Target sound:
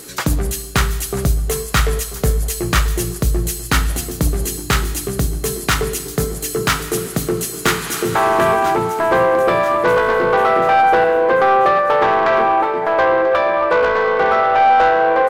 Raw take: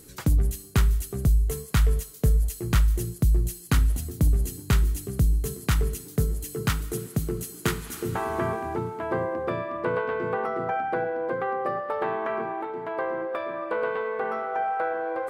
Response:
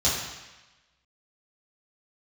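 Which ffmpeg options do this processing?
-filter_complex "[0:a]asplit=2[s0][s1];[s1]highpass=f=720:p=1,volume=8.91,asoftclip=type=tanh:threshold=0.282[s2];[s0][s2]amix=inputs=2:normalize=0,lowpass=f=5500:p=1,volume=0.501,aecho=1:1:988|1976|2964|3952|4940:0.2|0.102|0.0519|0.0265|0.0135,asplit=2[s3][s4];[1:a]atrim=start_sample=2205[s5];[s4][s5]afir=irnorm=-1:irlink=0,volume=0.0473[s6];[s3][s6]amix=inputs=2:normalize=0,volume=1.88"

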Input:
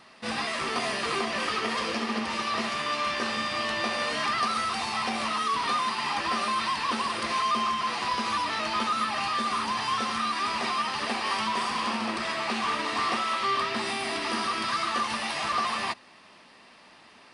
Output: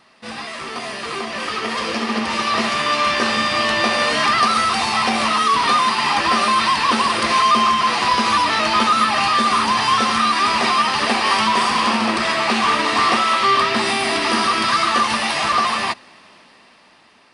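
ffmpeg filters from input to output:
-af "dynaudnorm=f=430:g=9:m=3.98"

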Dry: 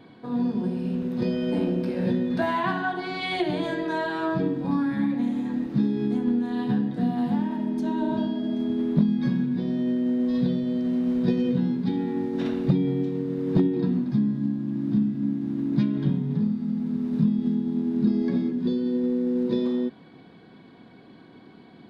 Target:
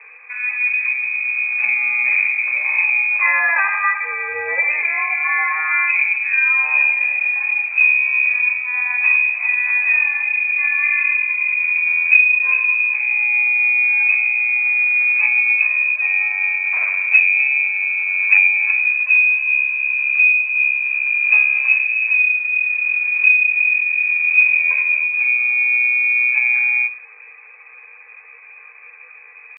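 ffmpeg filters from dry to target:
-af "bandreject=f=60:t=h:w=6,bandreject=f=120:t=h:w=6,bandreject=f=180:t=h:w=6,bandreject=f=240:t=h:w=6,bandreject=f=300:t=h:w=6,bandreject=f=360:t=h:w=6,bandreject=f=420:t=h:w=6,bandreject=f=480:t=h:w=6,atempo=0.74,lowpass=f=2300:t=q:w=0.5098,lowpass=f=2300:t=q:w=0.6013,lowpass=f=2300:t=q:w=0.9,lowpass=f=2300:t=q:w=2.563,afreqshift=-2700,lowshelf=f=450:t=q:w=1.5:g=-9,volume=2.66"

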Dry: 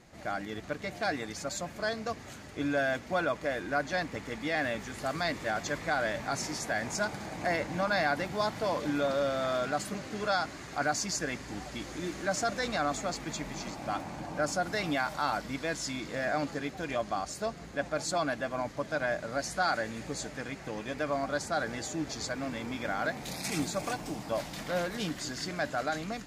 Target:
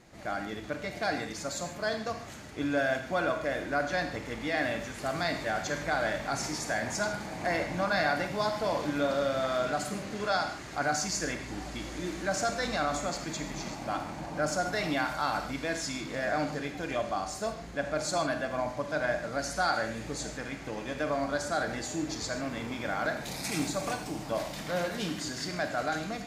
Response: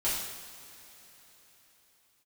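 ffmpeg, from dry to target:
-filter_complex "[0:a]asplit=2[s0][s1];[1:a]atrim=start_sample=2205,afade=t=out:st=0.18:d=0.01,atrim=end_sample=8379,adelay=33[s2];[s1][s2]afir=irnorm=-1:irlink=0,volume=0.224[s3];[s0][s3]amix=inputs=2:normalize=0"

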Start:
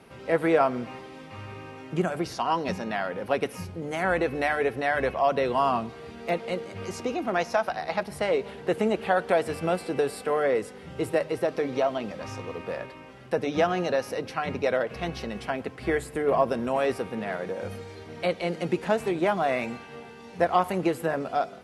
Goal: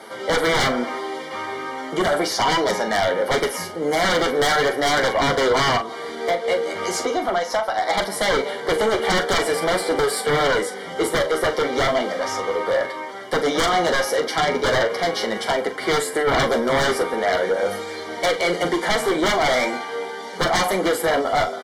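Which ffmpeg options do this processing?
-filter_complex "[0:a]highpass=430,asplit=3[s0][s1][s2];[s0]afade=t=out:st=5.76:d=0.02[s3];[s1]acompressor=threshold=0.0282:ratio=10,afade=t=in:st=5.76:d=0.02,afade=t=out:st=7.89:d=0.02[s4];[s2]afade=t=in:st=7.89:d=0.02[s5];[s3][s4][s5]amix=inputs=3:normalize=0,aeval=exprs='clip(val(0),-1,0.0562)':c=same,flanger=delay=9:depth=4.3:regen=26:speed=0.39:shape=triangular,aeval=exprs='0.168*sin(PI/2*5.62*val(0)/0.168)':c=same,asuperstop=centerf=2600:order=20:qfactor=5.6,asplit=2[s6][s7];[s7]adelay=41,volume=0.316[s8];[s6][s8]amix=inputs=2:normalize=0"

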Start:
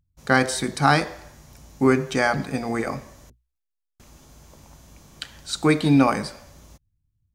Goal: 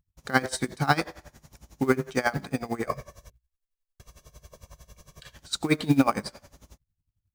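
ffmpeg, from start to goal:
-filter_complex "[0:a]acrusher=bits=6:mode=log:mix=0:aa=0.000001,asettb=1/sr,asplit=3[s0][s1][s2];[s0]atrim=end=2.874[s3];[s1]atrim=start=2.87:end=5.35,asetpts=PTS-STARTPTS,afade=t=in:d=0.004:c=qsin,afade=t=out:st=2.476:d=0.004:c=qsin,aecho=1:1:1.8:0.85,atrim=end_sample=109368[s4];[s2]atrim=start=5.346[s5];[s3][s4]acrossfade=d=0.004:c1=hsin:c2=qsin[s6];[s6][s5]acrossfade=d=0.004:c1=qsin:c2=hsin,aeval=exprs='val(0)*pow(10,-20*(0.5-0.5*cos(2*PI*11*n/s))/20)':c=same"

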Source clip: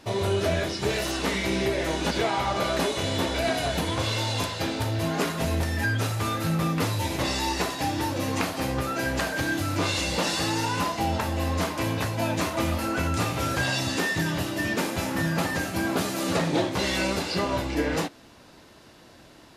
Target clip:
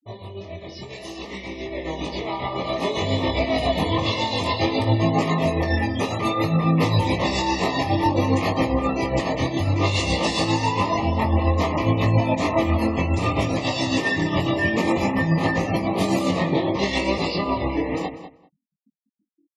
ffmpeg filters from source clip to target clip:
-filter_complex "[0:a]asettb=1/sr,asplit=3[s0][s1][s2];[s0]atrim=end=4.674[s3];[s1]atrim=start=4.67:end=7.01,asetpts=PTS-STARTPTS,afade=t=in:d=0.004:c=qsin,afade=t=out:st=2.336:d=0.004:c=qsin,highpass=f=150:p=1[s4];[s2]atrim=start=7.006[s5];[s3][s4]acrossfade=d=0.004:c1=hsin:c2=qsin[s6];[s6][s5]acrossfade=d=0.004:c1=qsin:c2=hsin,afftfilt=real='re*gte(hypot(re,im),0.0224)':imag='im*gte(hypot(re,im),0.0224)':win_size=1024:overlap=0.75,acompressor=threshold=0.0355:ratio=4,alimiter=level_in=1.26:limit=0.0631:level=0:latency=1:release=30,volume=0.794,dynaudnorm=f=710:g=7:m=6.31,flanger=delay=18.5:depth=3.7:speed=0.58,tremolo=f=7.3:d=0.53,asuperstop=centerf=1500:order=12:qfactor=3,asplit=2[s7][s8];[s8]adelay=195,lowpass=f=2600:p=1,volume=0.282,asplit=2[s9][s10];[s10]adelay=195,lowpass=f=2600:p=1,volume=0.17[s11];[s7][s9][s11]amix=inputs=3:normalize=0,adynamicequalizer=threshold=0.00708:dfrequency=3600:dqfactor=0.7:tfrequency=3600:tqfactor=0.7:attack=5:release=100:ratio=0.375:range=2.5:mode=cutabove:tftype=highshelf,volume=1.33"

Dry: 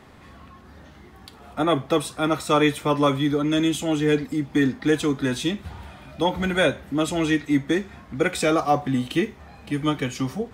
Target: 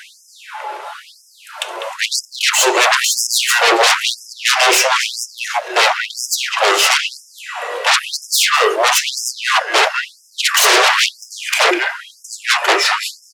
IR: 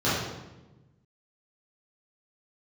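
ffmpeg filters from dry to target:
-filter_complex "[0:a]highpass=f=92:w=0.5412,highpass=f=92:w=1.3066,asetrate=34839,aresample=44100,bandreject=f=50:t=h:w=6,bandreject=f=100:t=h:w=6,bandreject=f=150:t=h:w=6,bandreject=f=200:t=h:w=6,bandreject=f=250:t=h:w=6,bandreject=f=300:t=h:w=6,bandreject=f=350:t=h:w=6,bandreject=f=400:t=h:w=6,bandreject=f=450:t=h:w=6,asplit=2[s0][s1];[s1]adelay=200,highpass=300,lowpass=3400,asoftclip=type=hard:threshold=0.15,volume=0.447[s2];[s0][s2]amix=inputs=2:normalize=0,aeval=exprs='0.447*sin(PI/2*8.91*val(0)/0.447)':c=same,afftfilt=real='re*gte(b*sr/1024,330*pow(5100/330,0.5+0.5*sin(2*PI*1*pts/sr)))':imag='im*gte(b*sr/1024,330*pow(5100/330,0.5+0.5*sin(2*PI*1*pts/sr)))':win_size=1024:overlap=0.75"

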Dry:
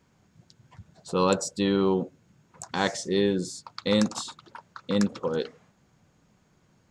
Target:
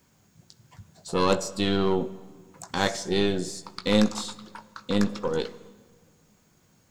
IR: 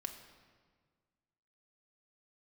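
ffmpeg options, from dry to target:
-filter_complex "[0:a]aemphasis=mode=production:type=50fm,acrossover=split=4400[s0][s1];[s1]acompressor=threshold=0.0112:ratio=4:attack=1:release=60[s2];[s0][s2]amix=inputs=2:normalize=0,aeval=exprs='0.376*(cos(1*acos(clip(val(0)/0.376,-1,1)))-cos(1*PI/2))+0.0299*(cos(6*acos(clip(val(0)/0.376,-1,1)))-cos(6*PI/2))':c=same,asplit=2[s3][s4];[1:a]atrim=start_sample=2205,adelay=19[s5];[s4][s5]afir=irnorm=-1:irlink=0,volume=0.447[s6];[s3][s6]amix=inputs=2:normalize=0"

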